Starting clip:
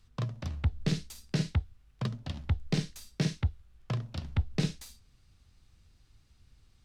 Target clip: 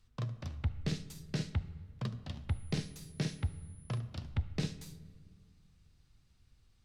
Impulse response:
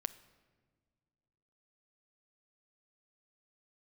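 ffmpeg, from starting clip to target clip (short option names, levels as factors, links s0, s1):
-filter_complex "[0:a]asettb=1/sr,asplit=3[s0][s1][s2];[s0]atrim=end=2.494[s3];[s1]atrim=start=2.49:end=4,asetpts=PTS-STARTPTS,afade=t=in:d=0.004:c=qsin,afade=t=out:st=1.506:d=0.004:c=qsin,aeval=exprs='val(0)+0.00126*sin(2*PI*10000*n/s)':c=same[s4];[s2]atrim=start=3.996[s5];[s3][s4]acrossfade=d=0.004:c1=hsin:c2=qsin[s6];[s6][s5]acrossfade=d=0.004:c1=qsin:c2=hsin[s7];[1:a]atrim=start_sample=2205,asetrate=35721,aresample=44100[s8];[s7][s8]afir=irnorm=-1:irlink=0,volume=0.562"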